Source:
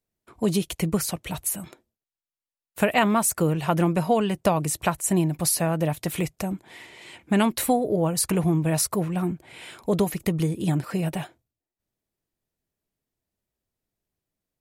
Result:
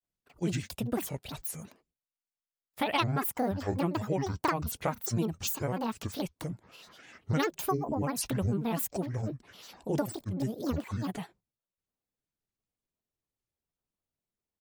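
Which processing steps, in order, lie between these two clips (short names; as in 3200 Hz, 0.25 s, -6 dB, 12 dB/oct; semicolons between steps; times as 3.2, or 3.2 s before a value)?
grains, spray 21 ms, pitch spread up and down by 12 st; gain -7 dB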